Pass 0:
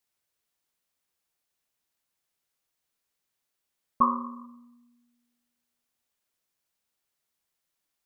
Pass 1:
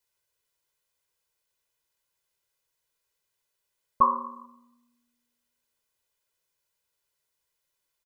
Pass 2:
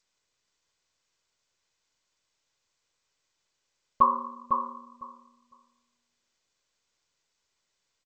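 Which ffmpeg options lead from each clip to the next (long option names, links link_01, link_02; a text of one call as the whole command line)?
ffmpeg -i in.wav -af "aecho=1:1:2:0.63" out.wav
ffmpeg -i in.wav -filter_complex "[0:a]asplit=2[link_01][link_02];[link_02]aecho=0:1:504|1008|1512:0.501|0.0752|0.0113[link_03];[link_01][link_03]amix=inputs=2:normalize=0" -ar 16000 -c:a g722 out.g722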